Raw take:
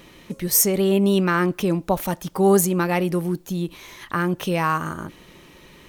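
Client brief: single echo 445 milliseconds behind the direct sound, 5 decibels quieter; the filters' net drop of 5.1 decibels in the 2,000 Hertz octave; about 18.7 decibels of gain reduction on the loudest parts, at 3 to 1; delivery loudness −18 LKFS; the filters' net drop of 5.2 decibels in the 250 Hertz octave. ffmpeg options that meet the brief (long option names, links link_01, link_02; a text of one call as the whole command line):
ffmpeg -i in.wav -af "equalizer=frequency=250:width_type=o:gain=-9,equalizer=frequency=2000:width_type=o:gain=-7,acompressor=threshold=-41dB:ratio=3,aecho=1:1:445:0.562,volume=21dB" out.wav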